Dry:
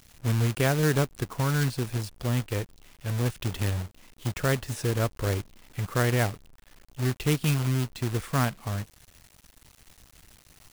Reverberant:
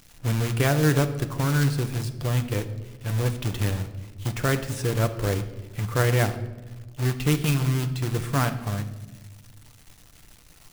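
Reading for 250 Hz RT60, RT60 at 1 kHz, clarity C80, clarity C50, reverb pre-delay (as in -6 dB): 1.9 s, 0.90 s, 14.0 dB, 12.0 dB, 6 ms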